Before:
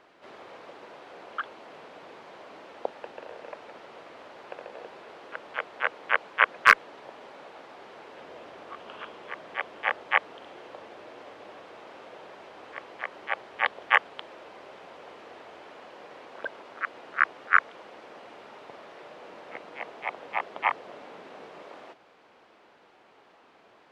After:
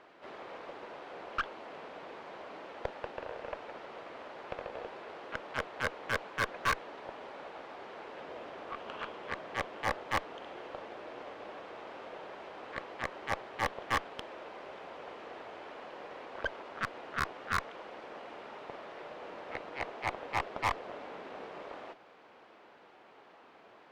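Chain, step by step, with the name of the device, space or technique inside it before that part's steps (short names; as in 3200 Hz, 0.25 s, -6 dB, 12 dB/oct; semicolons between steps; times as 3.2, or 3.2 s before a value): tube preamp driven hard (tube stage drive 29 dB, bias 0.7; low shelf 170 Hz -3 dB; high shelf 5000 Hz -8.5 dB); gain +5 dB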